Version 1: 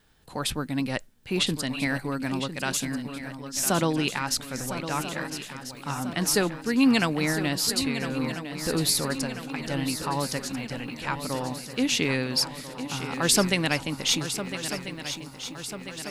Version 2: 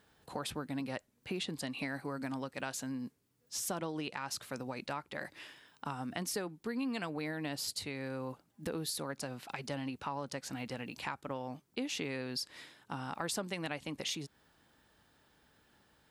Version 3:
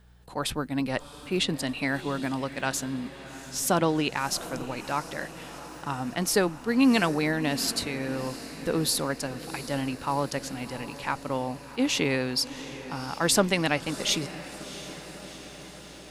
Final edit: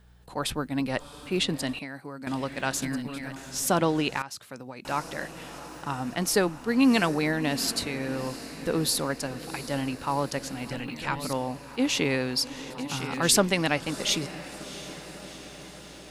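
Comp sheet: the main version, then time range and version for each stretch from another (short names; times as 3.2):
3
1.79–2.27 from 2
2.82–3.36 from 1
4.22–4.85 from 2
10.71–11.33 from 1
12.7–13.37 from 1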